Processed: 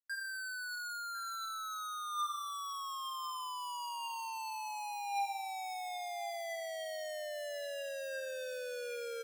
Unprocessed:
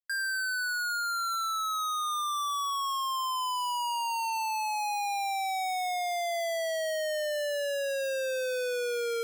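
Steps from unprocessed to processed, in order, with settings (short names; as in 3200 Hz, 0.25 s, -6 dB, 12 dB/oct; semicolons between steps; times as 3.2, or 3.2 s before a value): resonator 400 Hz, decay 0.72 s, mix 80%; outdoor echo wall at 180 m, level -10 dB; gain +3 dB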